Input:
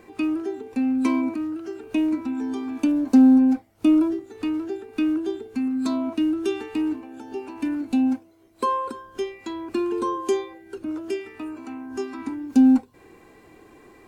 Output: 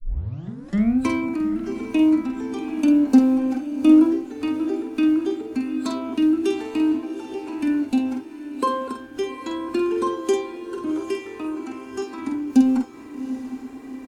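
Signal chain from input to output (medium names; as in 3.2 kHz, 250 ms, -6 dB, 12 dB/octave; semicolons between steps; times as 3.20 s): tape start-up on the opening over 0.98 s; doubling 48 ms -6 dB; echo that smears into a reverb 790 ms, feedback 44%, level -12 dB; trim +2 dB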